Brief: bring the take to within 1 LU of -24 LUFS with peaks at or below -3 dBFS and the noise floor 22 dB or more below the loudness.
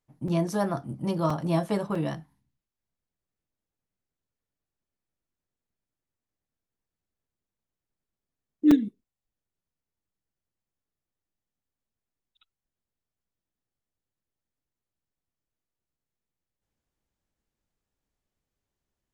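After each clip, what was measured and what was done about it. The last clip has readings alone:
dropouts 4; longest dropout 4.0 ms; loudness -27.0 LUFS; peak -10.5 dBFS; loudness target -24.0 LUFS
-> interpolate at 0.28/1.3/1.95/8.71, 4 ms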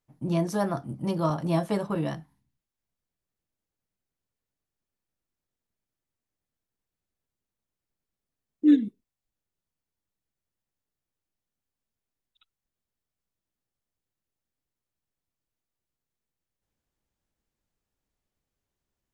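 dropouts 0; loudness -26.5 LUFS; peak -10.5 dBFS; loudness target -24.0 LUFS
-> gain +2.5 dB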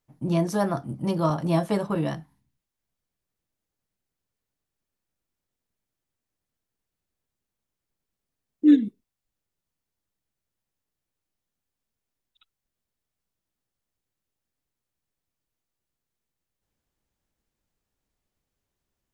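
loudness -24.0 LUFS; peak -8.0 dBFS; noise floor -86 dBFS

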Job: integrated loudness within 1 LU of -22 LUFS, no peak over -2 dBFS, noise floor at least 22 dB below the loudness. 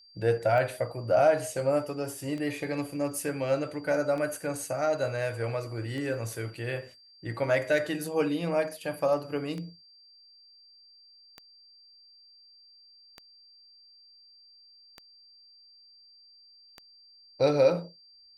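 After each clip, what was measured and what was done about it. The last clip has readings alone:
clicks 10; steady tone 4700 Hz; tone level -54 dBFS; loudness -29.0 LUFS; peak -11.5 dBFS; loudness target -22.0 LUFS
-> de-click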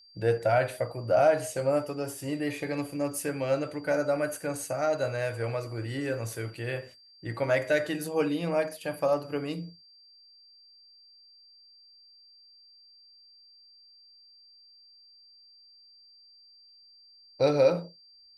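clicks 0; steady tone 4700 Hz; tone level -54 dBFS
-> notch 4700 Hz, Q 30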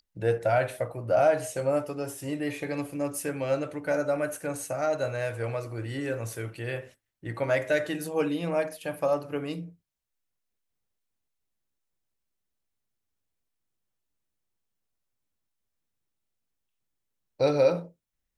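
steady tone none; loudness -29.0 LUFS; peak -11.5 dBFS; loudness target -22.0 LUFS
-> gain +7 dB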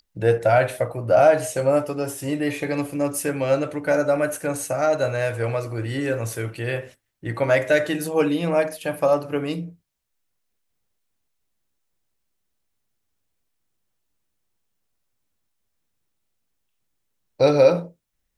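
loudness -22.0 LUFS; peak -4.5 dBFS; noise floor -75 dBFS

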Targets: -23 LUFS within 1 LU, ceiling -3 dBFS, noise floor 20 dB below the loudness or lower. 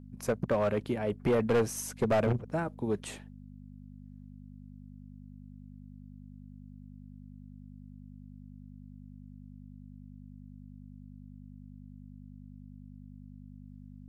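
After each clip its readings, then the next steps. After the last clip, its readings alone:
clipped 0.7%; flat tops at -21.5 dBFS; hum 50 Hz; harmonics up to 250 Hz; hum level -46 dBFS; loudness -30.5 LUFS; peak -21.5 dBFS; loudness target -23.0 LUFS
-> clip repair -21.5 dBFS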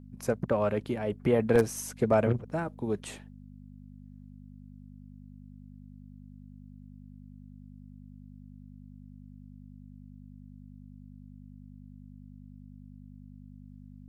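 clipped 0.0%; hum 50 Hz; harmonics up to 250 Hz; hum level -46 dBFS
-> de-hum 50 Hz, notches 5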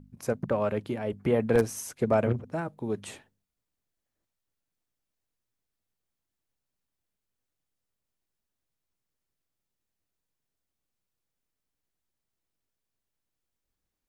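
hum none; loudness -29.0 LUFS; peak -12.0 dBFS; loudness target -23.0 LUFS
-> gain +6 dB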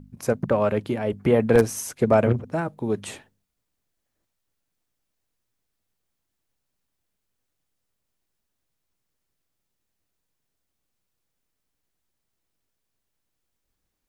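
loudness -23.0 LUFS; peak -6.0 dBFS; noise floor -79 dBFS

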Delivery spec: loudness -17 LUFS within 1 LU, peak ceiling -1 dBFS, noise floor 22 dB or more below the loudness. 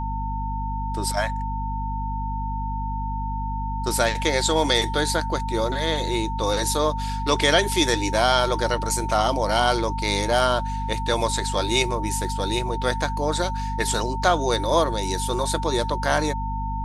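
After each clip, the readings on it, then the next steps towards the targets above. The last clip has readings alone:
hum 50 Hz; harmonics up to 250 Hz; hum level -26 dBFS; steady tone 900 Hz; tone level -29 dBFS; loudness -23.5 LUFS; peak -4.5 dBFS; loudness target -17.0 LUFS
-> notches 50/100/150/200/250 Hz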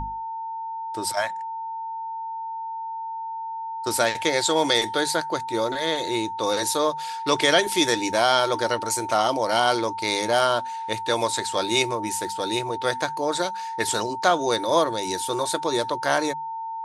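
hum none; steady tone 900 Hz; tone level -29 dBFS
-> notch 900 Hz, Q 30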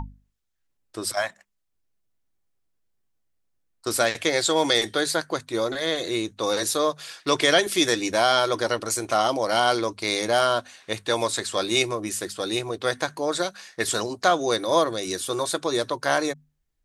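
steady tone none; loudness -24.0 LUFS; peak -5.0 dBFS; loudness target -17.0 LUFS
-> gain +7 dB; limiter -1 dBFS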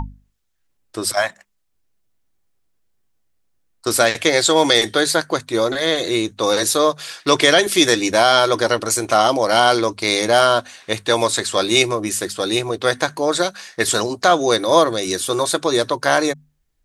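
loudness -17.0 LUFS; peak -1.0 dBFS; noise floor -67 dBFS

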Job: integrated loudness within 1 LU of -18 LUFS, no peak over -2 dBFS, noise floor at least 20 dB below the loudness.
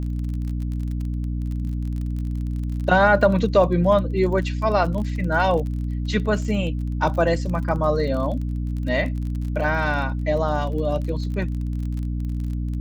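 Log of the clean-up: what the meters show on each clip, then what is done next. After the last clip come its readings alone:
ticks 32/s; hum 60 Hz; harmonics up to 300 Hz; hum level -23 dBFS; loudness -23.0 LUFS; peak -4.0 dBFS; loudness target -18.0 LUFS
-> de-click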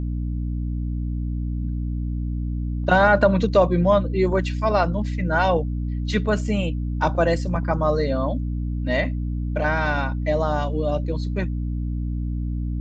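ticks 0/s; hum 60 Hz; harmonics up to 300 Hz; hum level -23 dBFS
-> de-hum 60 Hz, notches 5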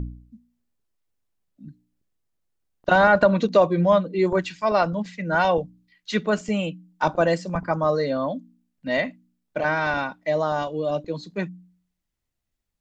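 hum none; loudness -23.0 LUFS; peak -5.5 dBFS; loudness target -18.0 LUFS
-> gain +5 dB; limiter -2 dBFS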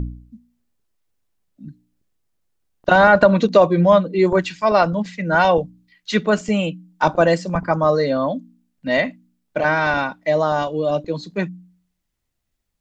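loudness -18.0 LUFS; peak -2.0 dBFS; noise floor -75 dBFS

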